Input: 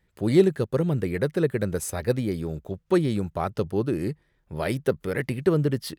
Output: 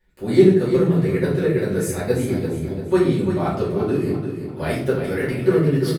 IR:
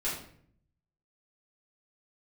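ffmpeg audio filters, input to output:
-filter_complex "[0:a]aecho=1:1:343|686|1029|1372:0.376|0.147|0.0572|0.0223[link_01];[1:a]atrim=start_sample=2205[link_02];[link_01][link_02]afir=irnorm=-1:irlink=0,volume=-2dB"

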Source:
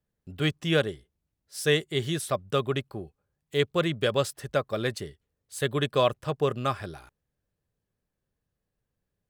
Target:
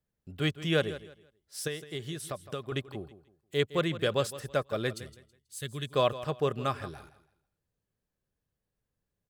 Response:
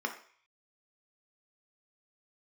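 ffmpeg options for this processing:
-filter_complex "[0:a]asettb=1/sr,asplit=3[link_01][link_02][link_03];[link_01]atrim=end=1.674[link_04];[link_02]atrim=start=1.67:end=2.72,asetpts=PTS-STARTPTS,afade=type=in:duration=0.004:curve=qsin,afade=type=out:start_time=1.046:duration=0.004:curve=qsin,acompressor=threshold=-31dB:ratio=6[link_05];[link_03]atrim=start=2.716[link_06];[link_04][link_05]acrossfade=duration=0.004:curve1=hsin:curve2=qsin[link_07];[link_07][link_06]acrossfade=duration=0.004:curve1=qsin:curve2=hsin,asettb=1/sr,asplit=3[link_08][link_09][link_10];[link_08]atrim=end=4.944[link_11];[link_09]atrim=start=4.94:end=5.89,asetpts=PTS-STARTPTS,afade=type=in:duration=0.004:curve=qsin,afade=type=out:start_time=0.946:duration=0.004:curve=qsin,equalizer=frequency=690:width=0.36:gain=-15[link_12];[link_10]atrim=start=5.886[link_13];[link_11][link_12]acrossfade=duration=0.004:curve1=hsin:curve2=qsin[link_14];[link_14][link_13]acrossfade=duration=0.004:curve1=qsin:curve2=hsin,aecho=1:1:162|324|486:0.178|0.0462|0.012,volume=-3dB"

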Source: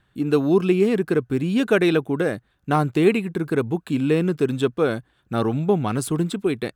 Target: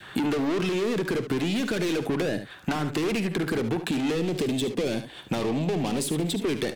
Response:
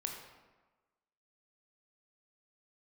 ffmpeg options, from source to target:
-filter_complex "[0:a]asplit=2[link_01][link_02];[link_02]highpass=frequency=720:poles=1,volume=26dB,asoftclip=type=tanh:threshold=-5.5dB[link_03];[link_01][link_03]amix=inputs=2:normalize=0,lowpass=frequency=5200:poles=1,volume=-6dB,asoftclip=type=tanh:threshold=-17dB,adynamicequalizer=threshold=0.0141:dfrequency=1100:dqfactor=1.2:tfrequency=1100:tqfactor=1.2:attack=5:release=100:ratio=0.375:range=3.5:mode=cutabove:tftype=bell,acompressor=threshold=-28dB:ratio=6,asettb=1/sr,asplit=3[link_04][link_05][link_06];[link_04]atrim=end=4.204[link_07];[link_05]atrim=start=4.2:end=6.44,asetpts=PTS-STARTPTS,afade=type=in:duration=0.004:curve=qsin,afade=type=out:start_time=2.236:duration=0.004:curve=qsin,equalizer=frequency=1400:width_type=o:width=0.69:gain=-10.5[link_08];[link_06]atrim=start=6.436[link_09];[link_07][link_08]acrossfade=duration=0.004:curve1=hsin:curve2=qsin[link_10];[link_10][link_09]acrossfade=duration=0.004:curve1=qsin:curve2=hsin,aecho=1:1:53|72:0.168|0.251,acrossover=split=140|430[link_11][link_12][link_13];[link_11]acompressor=threshold=-46dB:ratio=4[link_14];[link_12]acompressor=threshold=-33dB:ratio=4[link_15];[link_13]acompressor=threshold=-37dB:ratio=4[link_16];[link_14][link_15][link_16]amix=inputs=3:normalize=0,volume=6.5dB"

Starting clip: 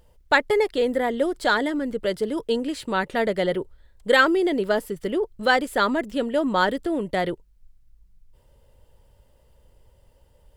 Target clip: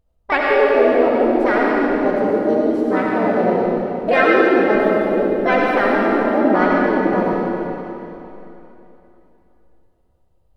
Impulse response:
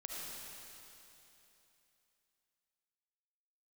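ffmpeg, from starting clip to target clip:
-filter_complex "[0:a]afwtdn=0.0562,asplit=2[link_01][link_02];[link_02]asetrate=58866,aresample=44100,atempo=0.749154,volume=-2dB[link_03];[link_01][link_03]amix=inputs=2:normalize=0,tiltshelf=frequency=650:gain=4[link_04];[1:a]atrim=start_sample=2205[link_05];[link_04][link_05]afir=irnorm=-1:irlink=0,volume=5.5dB"

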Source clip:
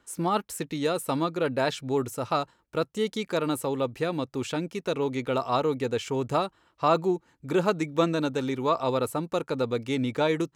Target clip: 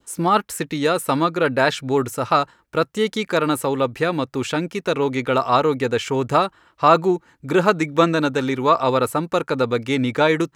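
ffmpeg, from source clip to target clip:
ffmpeg -i in.wav -af "adynamicequalizer=threshold=0.00794:dfrequency=1600:dqfactor=1.1:tfrequency=1600:tqfactor=1.1:attack=5:release=100:ratio=0.375:range=3:mode=boostabove:tftype=bell,volume=6.5dB" out.wav

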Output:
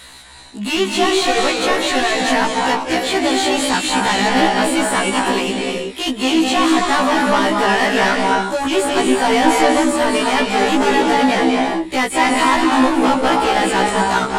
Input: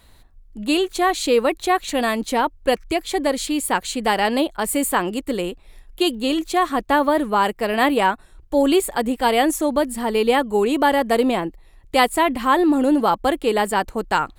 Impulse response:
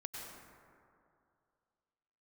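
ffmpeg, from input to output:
-filter_complex "[0:a]acrossover=split=3500[link_01][link_02];[link_02]acompressor=threshold=-41dB:ratio=4:attack=1:release=60[link_03];[link_01][link_03]amix=inputs=2:normalize=0,equalizer=frequency=500:width_type=o:width=1:gain=-6,equalizer=frequency=1000:width_type=o:width=1:gain=-3,equalizer=frequency=8000:width_type=o:width=1:gain=7,asplit=2[link_04][link_05];[link_05]highpass=frequency=720:poles=1,volume=30dB,asoftclip=type=tanh:threshold=-6.5dB[link_06];[link_04][link_06]amix=inputs=2:normalize=0,lowpass=frequency=4000:poles=1,volume=-6dB[link_07];[1:a]atrim=start_sample=2205,afade=type=out:start_time=0.25:duration=0.01,atrim=end_sample=11466,asetrate=22050,aresample=44100[link_08];[link_07][link_08]afir=irnorm=-1:irlink=0,afftfilt=real='re*1.73*eq(mod(b,3),0)':imag='im*1.73*eq(mod(b,3),0)':win_size=2048:overlap=0.75"

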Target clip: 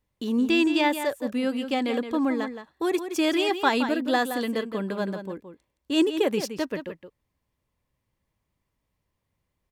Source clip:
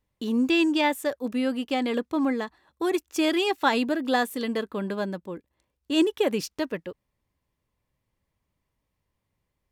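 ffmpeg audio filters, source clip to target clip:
ffmpeg -i in.wav -filter_complex "[0:a]asplit=2[link_01][link_02];[link_02]adelay=169.1,volume=-9dB,highshelf=frequency=4000:gain=-3.8[link_03];[link_01][link_03]amix=inputs=2:normalize=0" out.wav

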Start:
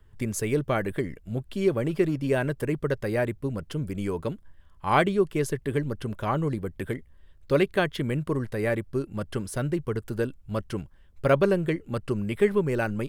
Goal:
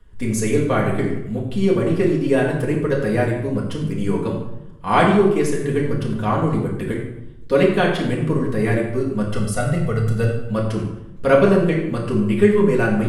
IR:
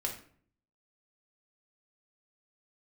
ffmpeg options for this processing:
-filter_complex "[0:a]asettb=1/sr,asplit=3[link_01][link_02][link_03];[link_01]atrim=end=9.254[link_04];[link_02]atrim=start=9.25:end=10.42,asetpts=PTS-STARTPTS,afade=type=in:duration=0.004:curve=qsin,afade=type=out:start_time=1.166:duration=0.004:curve=qsin,aecho=1:1:1.5:0.77,atrim=end_sample=51597[link_05];[link_03]atrim=start=10.416[link_06];[link_04][link_05]acrossfade=duration=0.004:curve1=hsin:curve2=qsin[link_07];[link_07][link_06]acrossfade=duration=0.004:curve1=qsin:curve2=hsin[link_08];[1:a]atrim=start_sample=2205,asetrate=22932,aresample=44100[link_09];[link_08][link_09]afir=irnorm=-1:irlink=0"

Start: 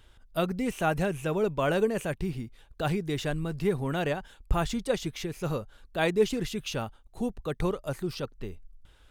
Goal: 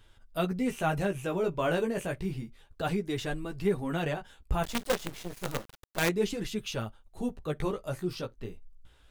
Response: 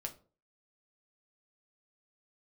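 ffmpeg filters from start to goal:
-filter_complex "[0:a]flanger=delay=9.2:depth=8.2:regen=-9:speed=0.3:shape=sinusoidal,asplit=2[link_01][link_02];[1:a]atrim=start_sample=2205,atrim=end_sample=3087[link_03];[link_02][link_03]afir=irnorm=-1:irlink=0,volume=-12.5dB[link_04];[link_01][link_04]amix=inputs=2:normalize=0,asettb=1/sr,asplit=3[link_05][link_06][link_07];[link_05]atrim=end=4.634[link_08];[link_06]atrim=start=4.63:end=6.09,asetpts=PTS-STARTPTS,afade=type=in:duration=0.004:curve=qsin,afade=type=out:start_time=1.456:duration=0.004:curve=qsin,acrusher=bits=5:dc=4:mix=0:aa=0.000001[link_09];[link_07]atrim=start=6.086[link_10];[link_08][link_09]acrossfade=duration=0.004:curve1=hsin:curve2=qsin[link_11];[link_11][link_10]acrossfade=duration=0.004:curve1=qsin:curve2=hsin"

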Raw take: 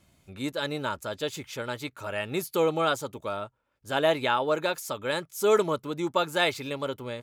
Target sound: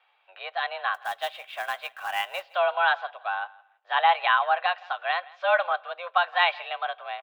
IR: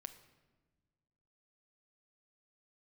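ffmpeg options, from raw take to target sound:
-filter_complex "[0:a]highpass=frequency=520:width_type=q:width=0.5412,highpass=frequency=520:width_type=q:width=1.307,lowpass=frequency=3200:width_type=q:width=0.5176,lowpass=frequency=3200:width_type=q:width=0.7071,lowpass=frequency=3200:width_type=q:width=1.932,afreqshift=180,asettb=1/sr,asplit=3[link_01][link_02][link_03];[link_01]atrim=end=0.944[link_04];[link_02]atrim=start=0.94:end=2.46,asetpts=PTS-STARTPTS,afade=type=in:duration=0.004:curve=qsin,afade=type=out:start_time=1.516:duration=0.004:curve=qsin,acrusher=bits=4:mode=log:mix=0:aa=0.000001[link_05];[link_03]atrim=start=2.456[link_06];[link_04][link_05]acrossfade=duration=0.004:curve1=hsin:curve2=qsin[link_07];[link_07][link_06]acrossfade=duration=0.004:curve1=qsin:curve2=hsin,aecho=1:1:166|332:0.0708|0.0149,asplit=2[link_08][link_09];[1:a]atrim=start_sample=2205,asetrate=61740,aresample=44100[link_10];[link_09][link_10]afir=irnorm=-1:irlink=0,volume=-4.5dB[link_11];[link_08][link_11]amix=inputs=2:normalize=0,volume=2.5dB"

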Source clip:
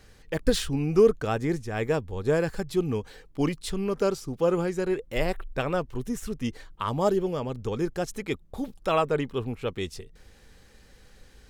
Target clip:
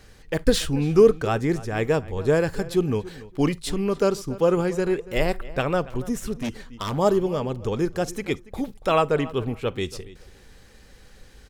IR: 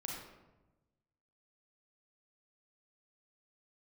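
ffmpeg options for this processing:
-filter_complex "[0:a]asplit=2[link_01][link_02];[link_02]adelay=283,lowpass=frequency=3500:poles=1,volume=-18dB,asplit=2[link_03][link_04];[link_04]adelay=283,lowpass=frequency=3500:poles=1,volume=0.2[link_05];[link_01][link_03][link_05]amix=inputs=3:normalize=0,asplit=2[link_06][link_07];[1:a]atrim=start_sample=2205,atrim=end_sample=3087[link_08];[link_07][link_08]afir=irnorm=-1:irlink=0,volume=-15dB[link_09];[link_06][link_09]amix=inputs=2:normalize=0,asettb=1/sr,asplit=3[link_10][link_11][link_12];[link_10]atrim=end=6.394[link_13];[link_11]atrim=start=6.39:end=6.98,asetpts=PTS-STARTPTS,afade=type=in:duration=0.004:curve=qsin,afade=type=out:start_time=0.586:duration=0.004:curve=qsin,aeval=exprs='0.0596*(abs(mod(val(0)/0.0596+3,4)-2)-1)':channel_layout=same[link_14];[link_12]atrim=start=6.976[link_15];[link_13][link_14]acrossfade=duration=0.004:curve1=hsin:curve2=qsin[link_16];[link_16][link_15]acrossfade=duration=0.004:curve1=qsin:curve2=hsin,volume=3dB"

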